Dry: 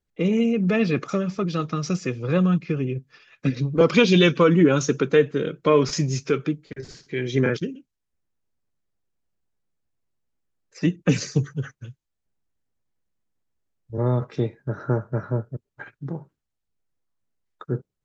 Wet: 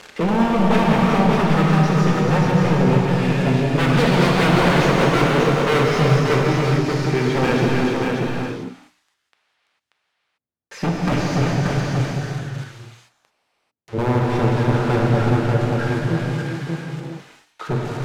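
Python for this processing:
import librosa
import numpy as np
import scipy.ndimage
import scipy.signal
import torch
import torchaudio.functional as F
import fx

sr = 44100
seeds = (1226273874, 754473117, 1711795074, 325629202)

p1 = x + 0.5 * 10.0 ** (-17.5 / 20.0) * np.diff(np.sign(x), prepend=np.sign(x[:1]))
p2 = scipy.signal.sosfilt(scipy.signal.butter(4, 71.0, 'highpass', fs=sr, output='sos'), p1)
p3 = fx.leveller(p2, sr, passes=3)
p4 = scipy.signal.sosfilt(scipy.signal.bessel(2, 1500.0, 'lowpass', norm='mag', fs=sr, output='sos'), p3)
p5 = fx.hum_notches(p4, sr, base_hz=60, count=5)
p6 = 10.0 ** (-11.5 / 20.0) * (np.abs((p5 / 10.0 ** (-11.5 / 20.0) + 3.0) % 4.0 - 2.0) - 1.0)
p7 = p6 + fx.echo_single(p6, sr, ms=584, db=-4.0, dry=0)
p8 = fx.rev_gated(p7, sr, seeds[0], gate_ms=470, shape='flat', drr_db=-2.5)
y = p8 * librosa.db_to_amplitude(-4.0)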